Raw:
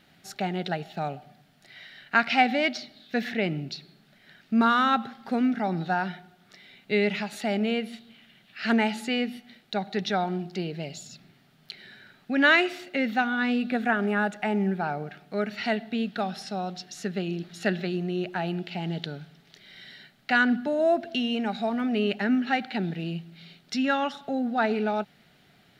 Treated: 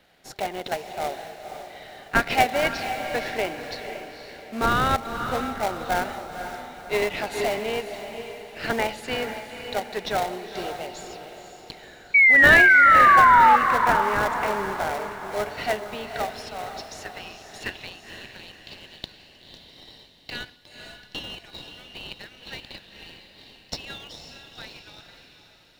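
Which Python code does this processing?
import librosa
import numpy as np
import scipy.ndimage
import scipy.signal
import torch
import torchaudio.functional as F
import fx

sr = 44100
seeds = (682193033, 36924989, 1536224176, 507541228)

p1 = fx.filter_sweep_highpass(x, sr, from_hz=540.0, to_hz=3900.0, start_s=15.77, end_s=18.33, q=1.3)
p2 = fx.sample_hold(p1, sr, seeds[0], rate_hz=1400.0, jitter_pct=20)
p3 = p1 + (p2 * 10.0 ** (-4.5 / 20.0))
p4 = fx.spec_paint(p3, sr, seeds[1], shape='fall', start_s=12.14, length_s=1.42, low_hz=840.0, high_hz=2300.0, level_db=-13.0)
p5 = fx.echo_diffused(p4, sr, ms=506, feedback_pct=45, wet_db=-8)
p6 = fx.band_squash(p5, sr, depth_pct=100, at=(7.02, 7.59))
y = p6 * 10.0 ** (-1.0 / 20.0)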